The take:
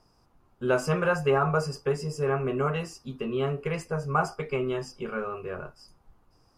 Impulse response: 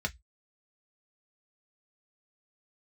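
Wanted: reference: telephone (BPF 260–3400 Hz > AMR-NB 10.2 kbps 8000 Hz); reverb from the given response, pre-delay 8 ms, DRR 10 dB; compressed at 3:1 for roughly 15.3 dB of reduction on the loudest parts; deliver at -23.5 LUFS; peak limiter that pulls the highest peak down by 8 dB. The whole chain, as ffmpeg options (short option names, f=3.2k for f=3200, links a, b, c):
-filter_complex "[0:a]acompressor=threshold=-41dB:ratio=3,alimiter=level_in=10dB:limit=-24dB:level=0:latency=1,volume=-10dB,asplit=2[a][b];[1:a]atrim=start_sample=2205,adelay=8[c];[b][c]afir=irnorm=-1:irlink=0,volume=-15dB[d];[a][d]amix=inputs=2:normalize=0,highpass=260,lowpass=3.4k,volume=22dB" -ar 8000 -c:a libopencore_amrnb -b:a 10200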